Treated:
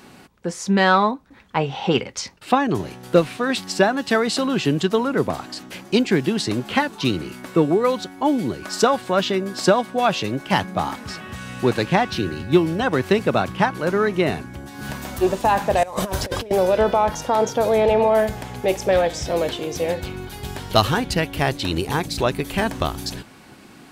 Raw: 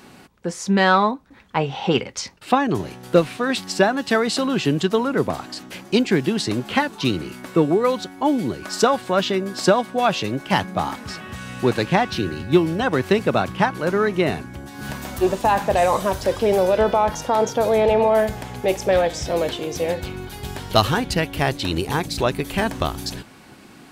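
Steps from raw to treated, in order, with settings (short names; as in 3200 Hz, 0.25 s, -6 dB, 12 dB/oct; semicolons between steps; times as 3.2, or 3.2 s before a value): 15.83–16.51 negative-ratio compressor -25 dBFS, ratio -0.5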